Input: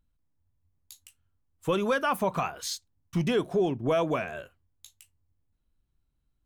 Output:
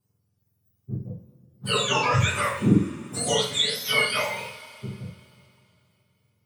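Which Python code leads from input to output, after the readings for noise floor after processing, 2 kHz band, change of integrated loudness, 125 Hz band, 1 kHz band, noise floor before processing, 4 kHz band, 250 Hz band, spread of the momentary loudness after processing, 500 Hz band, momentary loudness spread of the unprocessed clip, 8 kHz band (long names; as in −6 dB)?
−72 dBFS, +9.0 dB, +5.0 dB, +8.5 dB, +3.5 dB, −75 dBFS, +15.0 dB, +4.0 dB, 17 LU, −1.5 dB, 11 LU, +11.0 dB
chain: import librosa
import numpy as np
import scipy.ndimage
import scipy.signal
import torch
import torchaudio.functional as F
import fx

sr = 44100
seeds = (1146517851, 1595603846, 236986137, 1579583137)

y = fx.octave_mirror(x, sr, pivot_hz=1200.0)
y = fx.rev_double_slope(y, sr, seeds[0], early_s=0.44, late_s=2.9, knee_db=-21, drr_db=-8.0)
y = fx.dynamic_eq(y, sr, hz=7200.0, q=0.75, threshold_db=-38.0, ratio=4.0, max_db=-4)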